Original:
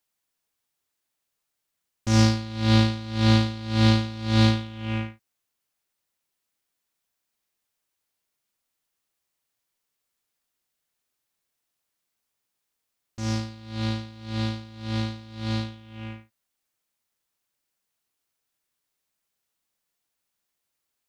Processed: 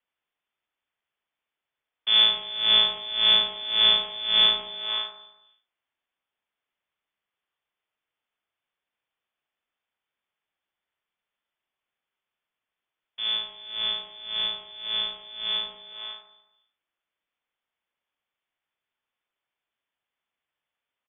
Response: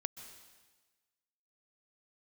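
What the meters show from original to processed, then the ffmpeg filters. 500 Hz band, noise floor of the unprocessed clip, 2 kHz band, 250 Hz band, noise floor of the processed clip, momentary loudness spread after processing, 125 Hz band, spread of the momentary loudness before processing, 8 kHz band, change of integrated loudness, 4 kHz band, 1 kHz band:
-6.5 dB, -81 dBFS, +0.5 dB, -25.5 dB, under -85 dBFS, 16 LU, under -30 dB, 15 LU, under -35 dB, +3.0 dB, +13.0 dB, -3.5 dB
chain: -af "lowpass=f=3100:t=q:w=0.5098,lowpass=f=3100:t=q:w=0.6013,lowpass=f=3100:t=q:w=0.9,lowpass=f=3100:t=q:w=2.563,afreqshift=-3600,aecho=1:1:73|146|219|292|365|438|511:0.335|0.198|0.117|0.0688|0.0406|0.0239|0.0141"

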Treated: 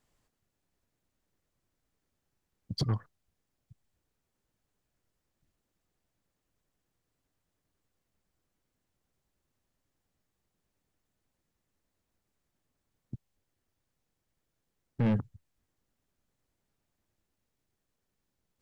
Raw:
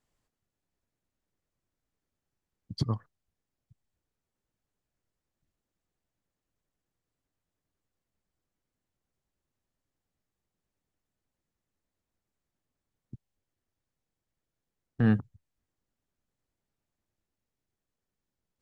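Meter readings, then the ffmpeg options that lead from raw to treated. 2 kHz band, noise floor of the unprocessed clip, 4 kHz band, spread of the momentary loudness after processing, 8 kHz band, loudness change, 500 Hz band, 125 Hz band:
-7.0 dB, under -85 dBFS, +3.5 dB, 20 LU, no reading, -2.5 dB, -0.5 dB, -1.5 dB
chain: -af "asoftclip=type=tanh:threshold=0.0422,volume=1.68"

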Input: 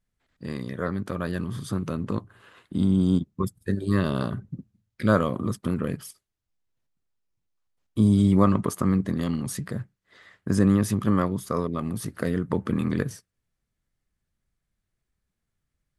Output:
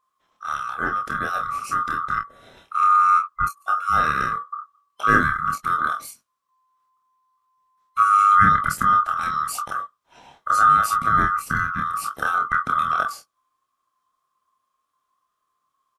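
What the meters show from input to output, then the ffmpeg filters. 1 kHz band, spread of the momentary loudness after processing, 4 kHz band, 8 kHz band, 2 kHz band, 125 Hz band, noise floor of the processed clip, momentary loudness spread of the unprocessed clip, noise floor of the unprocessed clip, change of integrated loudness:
+17.5 dB, 15 LU, +3.5 dB, +4.0 dB, +15.0 dB, -10.0 dB, -77 dBFS, 14 LU, -82 dBFS, +5.5 dB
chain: -af "afftfilt=real='real(if(lt(b,960),b+48*(1-2*mod(floor(b/48),2)),b),0)':imag='imag(if(lt(b,960),b+48*(1-2*mod(floor(b/48),2)),b),0)':win_size=2048:overlap=0.75,aecho=1:1:27|47:0.668|0.237,volume=1.33"

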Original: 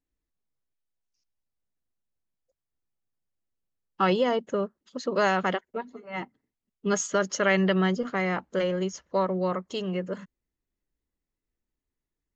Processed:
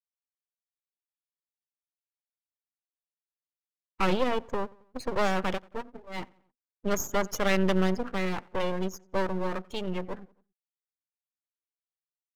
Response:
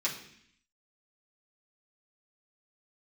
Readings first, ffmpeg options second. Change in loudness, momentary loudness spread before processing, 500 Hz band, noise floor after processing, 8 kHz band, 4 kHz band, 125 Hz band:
-3.0 dB, 14 LU, -3.5 dB, under -85 dBFS, no reading, -2.0 dB, -2.5 dB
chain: -filter_complex "[0:a]afftfilt=real='re*gte(hypot(re,im),0.0126)':imag='im*gte(hypot(re,im),0.0126)':win_size=1024:overlap=0.75,asplit=2[s0][s1];[s1]adelay=90,lowpass=f=2100:p=1,volume=0.0631,asplit=2[s2][s3];[s3]adelay=90,lowpass=f=2100:p=1,volume=0.52,asplit=2[s4][s5];[s5]adelay=90,lowpass=f=2100:p=1,volume=0.52[s6];[s0][s2][s4][s6]amix=inputs=4:normalize=0,aeval=exprs='max(val(0),0)':c=same,volume=1.19"

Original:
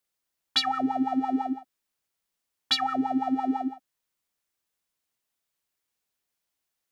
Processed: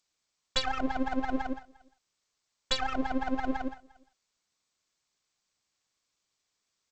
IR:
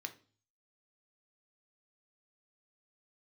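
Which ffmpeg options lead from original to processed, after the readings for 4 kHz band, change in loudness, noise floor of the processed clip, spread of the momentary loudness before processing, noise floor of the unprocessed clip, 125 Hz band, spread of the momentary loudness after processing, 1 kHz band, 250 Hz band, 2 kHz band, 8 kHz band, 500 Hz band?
-6.5 dB, -5.5 dB, -82 dBFS, 7 LU, -83 dBFS, +5.0 dB, 8 LU, -5.5 dB, -6.0 dB, +1.5 dB, -0.5 dB, +2.5 dB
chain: -filter_complex "[0:a]asplit=2[s0][s1];[s1]adelay=350,highpass=300,lowpass=3400,asoftclip=type=hard:threshold=0.119,volume=0.0562[s2];[s0][s2]amix=inputs=2:normalize=0,aeval=exprs='max(val(0),0)':c=same" -ar 16000 -c:a g722

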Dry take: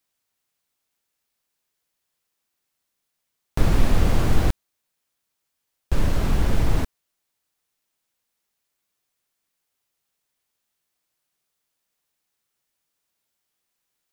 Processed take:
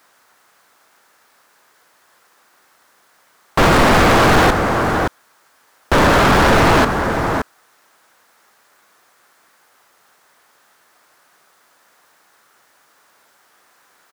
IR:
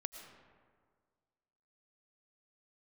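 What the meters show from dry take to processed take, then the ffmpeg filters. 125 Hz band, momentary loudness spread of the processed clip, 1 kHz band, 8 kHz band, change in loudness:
+5.0 dB, 10 LU, +21.5 dB, +13.0 dB, +10.5 dB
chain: -filter_complex "[0:a]highshelf=f=2000:t=q:w=1.5:g=-8,aecho=1:1:571:0.168,asplit=2[s0][s1];[s1]highpass=f=720:p=1,volume=89.1,asoftclip=type=tanh:threshold=0.596[s2];[s0][s2]amix=inputs=2:normalize=0,lowpass=f=5000:p=1,volume=0.501"

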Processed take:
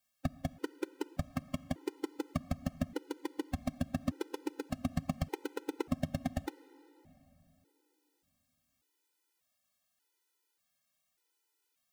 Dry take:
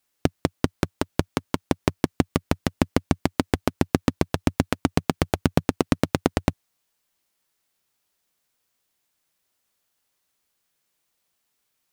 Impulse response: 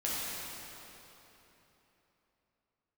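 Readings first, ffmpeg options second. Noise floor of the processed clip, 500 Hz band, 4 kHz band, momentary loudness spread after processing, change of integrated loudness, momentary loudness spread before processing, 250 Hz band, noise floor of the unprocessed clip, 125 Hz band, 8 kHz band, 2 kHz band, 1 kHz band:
-81 dBFS, -14.5 dB, -16.0 dB, 5 LU, -13.5 dB, 4 LU, -13.0 dB, -76 dBFS, -13.5 dB, -15.5 dB, -16.0 dB, -15.0 dB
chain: -filter_complex "[0:a]lowshelf=f=140:g=-6,asoftclip=type=tanh:threshold=0.15,asplit=2[s0][s1];[1:a]atrim=start_sample=2205[s2];[s1][s2]afir=irnorm=-1:irlink=0,volume=0.0794[s3];[s0][s3]amix=inputs=2:normalize=0,afftfilt=real='re*gt(sin(2*PI*0.85*pts/sr)*(1-2*mod(floor(b*sr/1024/260),2)),0)':imag='im*gt(sin(2*PI*0.85*pts/sr)*(1-2*mod(floor(b*sr/1024/260),2)),0)':win_size=1024:overlap=0.75,volume=0.708"

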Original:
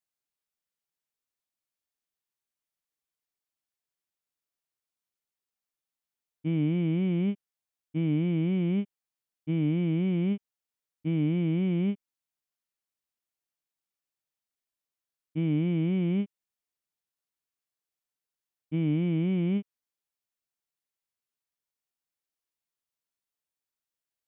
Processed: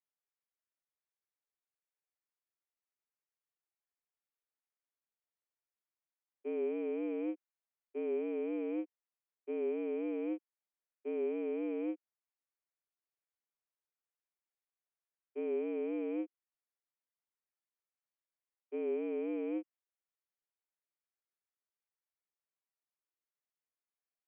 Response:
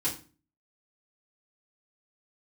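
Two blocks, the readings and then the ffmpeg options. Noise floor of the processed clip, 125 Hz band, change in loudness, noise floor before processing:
under -85 dBFS, under -40 dB, -9.5 dB, under -85 dBFS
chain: -af "highpass=f=210:t=q:w=0.5412,highpass=f=210:t=q:w=1.307,lowpass=f=2300:t=q:w=0.5176,lowpass=f=2300:t=q:w=0.7071,lowpass=f=2300:t=q:w=1.932,afreqshift=110,volume=0.531"

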